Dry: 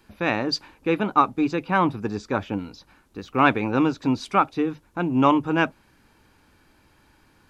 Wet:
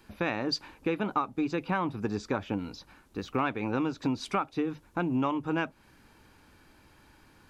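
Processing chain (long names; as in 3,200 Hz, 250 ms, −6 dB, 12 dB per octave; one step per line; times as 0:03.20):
downward compressor 6 to 1, threshold −26 dBFS, peak gain reduction 13.5 dB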